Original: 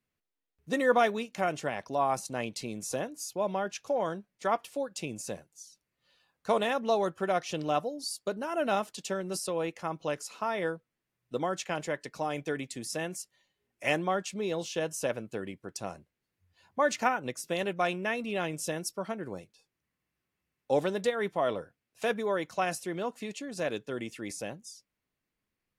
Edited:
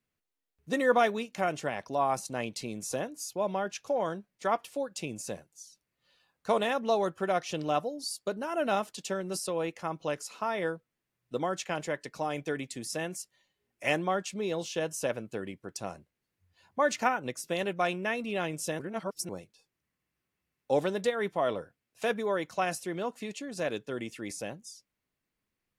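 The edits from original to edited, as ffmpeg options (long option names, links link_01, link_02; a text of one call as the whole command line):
ffmpeg -i in.wav -filter_complex "[0:a]asplit=3[link_01][link_02][link_03];[link_01]atrim=end=18.792[link_04];[link_02]atrim=start=18.788:end=19.292,asetpts=PTS-STARTPTS,areverse[link_05];[link_03]atrim=start=19.288[link_06];[link_04][link_05]acrossfade=duration=0.004:curve1=hsin:curve2=hsin[link_07];[link_07][link_06]acrossfade=duration=0.004:curve1=hsin:curve2=hsin" out.wav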